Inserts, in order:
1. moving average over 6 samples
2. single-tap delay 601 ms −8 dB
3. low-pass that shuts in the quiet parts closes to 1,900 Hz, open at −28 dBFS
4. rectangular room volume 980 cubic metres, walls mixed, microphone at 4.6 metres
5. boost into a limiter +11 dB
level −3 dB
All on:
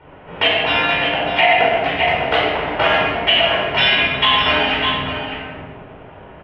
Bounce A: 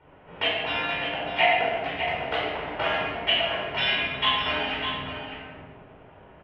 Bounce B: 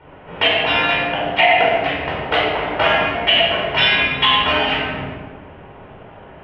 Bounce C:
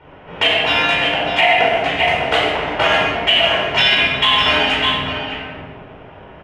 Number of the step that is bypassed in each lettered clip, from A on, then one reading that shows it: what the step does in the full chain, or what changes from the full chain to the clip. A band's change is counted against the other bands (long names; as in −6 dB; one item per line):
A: 5, change in crest factor +5.0 dB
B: 2, change in momentary loudness spread −2 LU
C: 1, 4 kHz band +2.0 dB